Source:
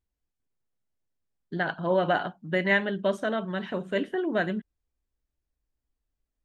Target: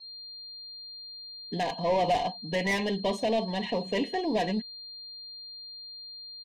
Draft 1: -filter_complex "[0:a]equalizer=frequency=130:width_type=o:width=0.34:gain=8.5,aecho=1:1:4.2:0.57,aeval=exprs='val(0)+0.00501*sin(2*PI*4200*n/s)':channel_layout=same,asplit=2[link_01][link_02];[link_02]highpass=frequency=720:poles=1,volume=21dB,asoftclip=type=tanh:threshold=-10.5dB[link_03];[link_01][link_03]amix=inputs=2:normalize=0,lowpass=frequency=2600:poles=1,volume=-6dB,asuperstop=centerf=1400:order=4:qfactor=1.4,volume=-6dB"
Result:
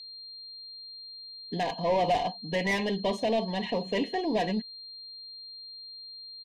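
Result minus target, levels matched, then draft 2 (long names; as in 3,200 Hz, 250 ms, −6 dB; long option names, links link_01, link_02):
4,000 Hz band −3.0 dB
-filter_complex "[0:a]equalizer=frequency=130:width_type=o:width=0.34:gain=8.5,aecho=1:1:4.2:0.57,aeval=exprs='val(0)+0.00501*sin(2*PI*4200*n/s)':channel_layout=same,asplit=2[link_01][link_02];[link_02]highpass=frequency=720:poles=1,volume=21dB,asoftclip=type=tanh:threshold=-10.5dB[link_03];[link_01][link_03]amix=inputs=2:normalize=0,lowpass=frequency=2600:poles=1,volume=-6dB,asuperstop=centerf=1400:order=4:qfactor=1.4,adynamicequalizer=threshold=0.00891:dfrequency=5100:dqfactor=0.7:tfrequency=5100:tqfactor=0.7:attack=5:release=100:ratio=0.375:range=1.5:mode=boostabove:tftype=highshelf,volume=-6dB"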